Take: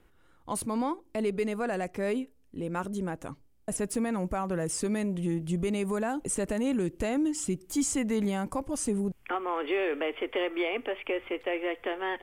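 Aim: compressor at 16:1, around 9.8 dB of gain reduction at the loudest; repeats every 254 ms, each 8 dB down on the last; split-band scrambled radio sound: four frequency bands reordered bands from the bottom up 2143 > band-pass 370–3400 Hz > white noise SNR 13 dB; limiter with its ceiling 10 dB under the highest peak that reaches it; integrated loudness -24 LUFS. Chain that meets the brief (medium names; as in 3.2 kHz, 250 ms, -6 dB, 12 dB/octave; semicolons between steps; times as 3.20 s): compression 16:1, threshold -34 dBFS; peak limiter -31.5 dBFS; feedback delay 254 ms, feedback 40%, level -8 dB; four frequency bands reordered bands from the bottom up 2143; band-pass 370–3400 Hz; white noise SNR 13 dB; trim +14 dB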